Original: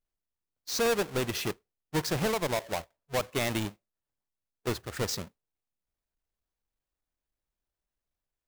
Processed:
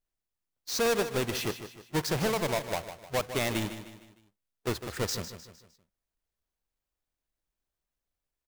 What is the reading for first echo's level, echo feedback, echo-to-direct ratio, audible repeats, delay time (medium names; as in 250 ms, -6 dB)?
-11.0 dB, 43%, -10.0 dB, 4, 153 ms